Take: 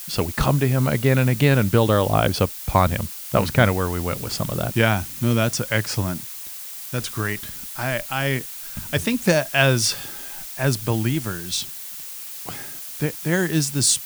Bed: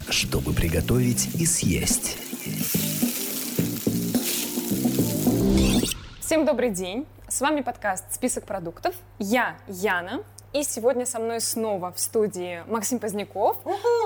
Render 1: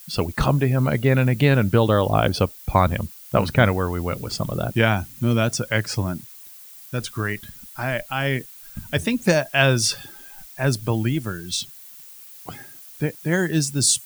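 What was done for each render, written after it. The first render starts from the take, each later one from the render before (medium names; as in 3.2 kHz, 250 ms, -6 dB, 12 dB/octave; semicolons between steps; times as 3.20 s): noise reduction 11 dB, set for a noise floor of -35 dBFS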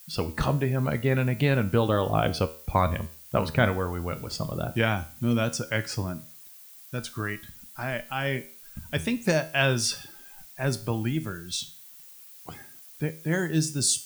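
feedback comb 79 Hz, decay 0.43 s, harmonics all, mix 60%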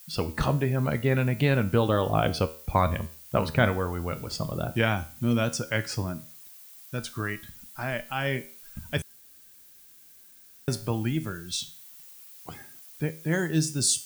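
9.02–10.68 s: room tone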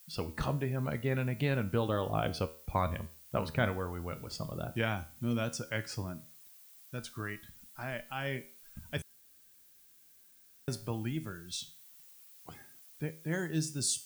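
trim -8 dB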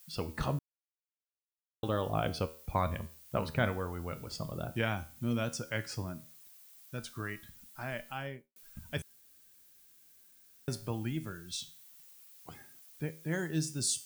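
0.59–1.83 s: mute; 8.07–8.56 s: studio fade out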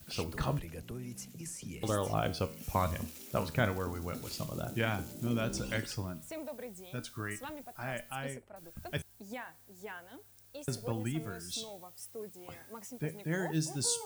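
add bed -21.5 dB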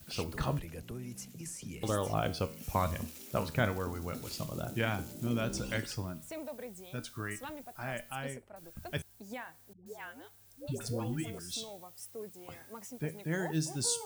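9.73–11.39 s: phase dispersion highs, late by 131 ms, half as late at 460 Hz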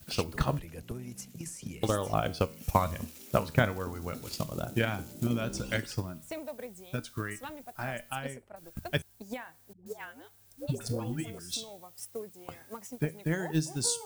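transient shaper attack +8 dB, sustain -1 dB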